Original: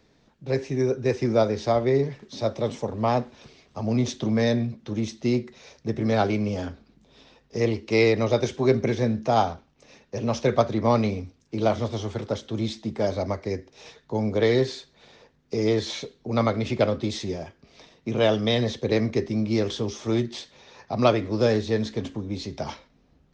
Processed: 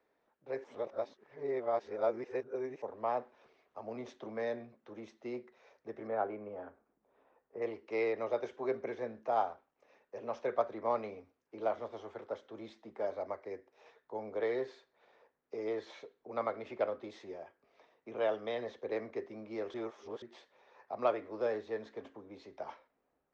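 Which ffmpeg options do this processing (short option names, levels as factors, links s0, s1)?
-filter_complex "[0:a]asettb=1/sr,asplit=3[s0][s1][s2];[s0]atrim=end=6.074[s3];[s1]atrim=start=6.07:end=7.62,asetpts=PTS-STARTPTS,afade=t=in:d=0.004:c=qsin,afade=t=out:st=1.546:d=0.004:c=qsin,lowpass=1600[s4];[s2]atrim=start=7.616[s5];[s3][s4]acrossfade=d=0.004:c1=hsin:c2=qsin[s6];[s6][s5]acrossfade=d=0.004:c1=qsin:c2=hsin,asplit=5[s7][s8][s9][s10][s11];[s7]atrim=end=0.642[s12];[s8]atrim=start=0.638:end=2.822,asetpts=PTS-STARTPTS,areverse[s13];[s9]atrim=start=2.818:end=19.742[s14];[s10]atrim=start=19.738:end=20.222,asetpts=PTS-STARTPTS,areverse[s15];[s11]atrim=start=20.218[s16];[s12][s13]acrossfade=d=0.004:c1=hsin:c2=hsin[s17];[s17][s14]acrossfade=d=0.004:c1=hsin:c2=hsin[s18];[s18][s15]acrossfade=d=0.004:c1=hsin:c2=hsin[s19];[s19][s16]acrossfade=d=0.004:c1=hsin:c2=hsin,acrossover=split=380 2100:gain=0.0708 1 0.112[s20][s21][s22];[s20][s21][s22]amix=inputs=3:normalize=0,volume=0.355"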